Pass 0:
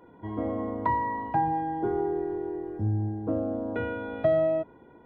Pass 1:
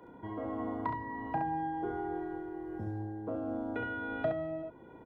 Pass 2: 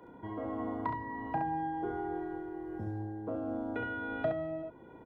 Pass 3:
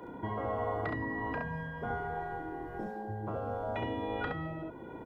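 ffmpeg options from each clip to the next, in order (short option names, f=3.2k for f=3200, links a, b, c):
-filter_complex "[0:a]acrossover=split=84|430[a][b][c];[a]acompressor=threshold=-55dB:ratio=4[d];[b]acompressor=threshold=-41dB:ratio=4[e];[c]acompressor=threshold=-33dB:ratio=4[f];[d][e][f]amix=inputs=3:normalize=0,tremolo=f=1.4:d=0.31,asplit=2[g][h];[h]aecho=0:1:34|68:0.335|0.562[i];[g][i]amix=inputs=2:normalize=0"
-af anull
-af "afftfilt=real='re*lt(hypot(re,im),0.0708)':imag='im*lt(hypot(re,im),0.0708)':win_size=1024:overlap=0.75,volume=7.5dB"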